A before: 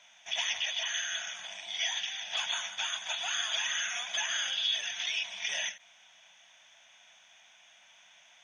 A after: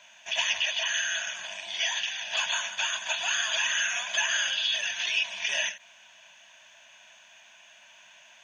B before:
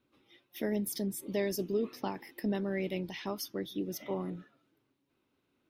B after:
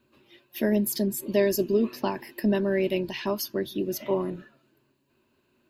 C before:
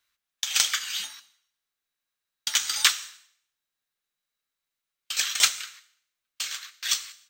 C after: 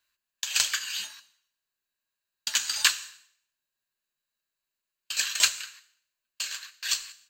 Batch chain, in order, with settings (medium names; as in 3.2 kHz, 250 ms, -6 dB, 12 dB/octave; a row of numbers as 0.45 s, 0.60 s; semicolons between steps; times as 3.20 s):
rippled EQ curve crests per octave 1.4, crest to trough 8 dB; normalise loudness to -27 LUFS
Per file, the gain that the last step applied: +5.0 dB, +7.5 dB, -2.5 dB